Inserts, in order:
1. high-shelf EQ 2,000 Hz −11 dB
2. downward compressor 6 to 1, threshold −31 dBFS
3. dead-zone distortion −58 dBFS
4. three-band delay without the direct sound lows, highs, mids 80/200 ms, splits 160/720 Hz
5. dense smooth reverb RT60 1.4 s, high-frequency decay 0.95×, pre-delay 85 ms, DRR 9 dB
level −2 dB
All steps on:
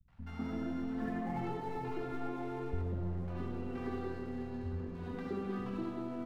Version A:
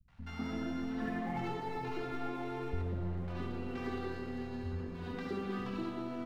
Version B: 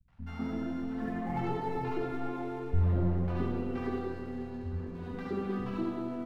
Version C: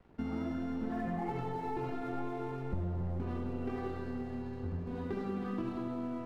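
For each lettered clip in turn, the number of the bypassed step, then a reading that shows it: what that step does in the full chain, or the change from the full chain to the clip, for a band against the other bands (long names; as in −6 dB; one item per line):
1, 4 kHz band +7.0 dB
2, average gain reduction 3.5 dB
4, echo-to-direct ratio 27.0 dB to −9.0 dB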